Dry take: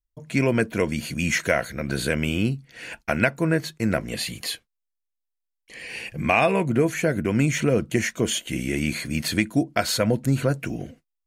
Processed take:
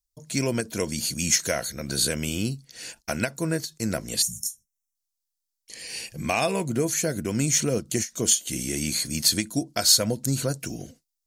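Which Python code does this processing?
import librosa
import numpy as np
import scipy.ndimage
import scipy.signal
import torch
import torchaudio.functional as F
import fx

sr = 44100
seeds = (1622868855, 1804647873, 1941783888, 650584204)

y = fx.high_shelf_res(x, sr, hz=3500.0, db=13.0, q=1.5)
y = fx.spec_box(y, sr, start_s=4.22, length_s=0.73, low_hz=220.0, high_hz=5300.0, gain_db=-29)
y = fx.end_taper(y, sr, db_per_s=310.0)
y = y * 10.0 ** (-4.5 / 20.0)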